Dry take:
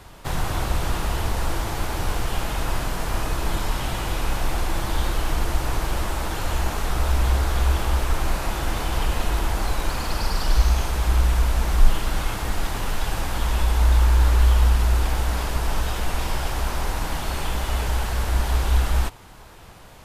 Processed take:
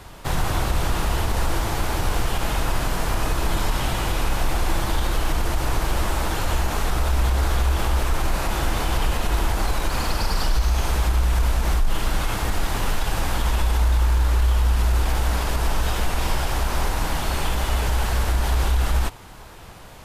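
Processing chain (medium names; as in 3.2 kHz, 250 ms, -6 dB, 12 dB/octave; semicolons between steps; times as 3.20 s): peak limiter -15 dBFS, peak gain reduction 11.5 dB; trim +3 dB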